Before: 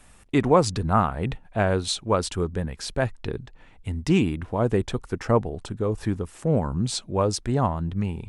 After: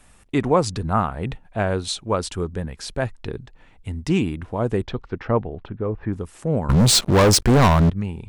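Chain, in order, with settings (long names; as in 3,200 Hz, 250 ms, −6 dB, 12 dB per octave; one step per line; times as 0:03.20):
0:04.82–0:06.12: low-pass filter 5,000 Hz → 2,100 Hz 24 dB per octave
0:06.69–0:07.90: leveller curve on the samples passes 5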